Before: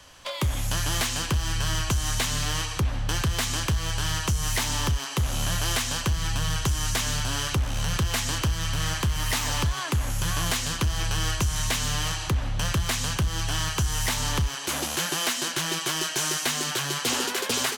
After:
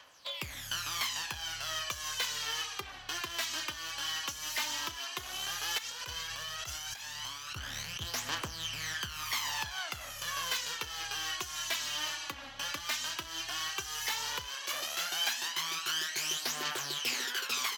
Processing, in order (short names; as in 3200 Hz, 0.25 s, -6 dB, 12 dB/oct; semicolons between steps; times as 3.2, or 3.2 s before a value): HPF 1500 Hz 6 dB/oct; bell 9100 Hz -12 dB 0.73 oct; 5.78–8.14 negative-ratio compressor -38 dBFS, ratio -1; phaser 0.12 Hz, delay 3.7 ms, feedback 61%; gain -5 dB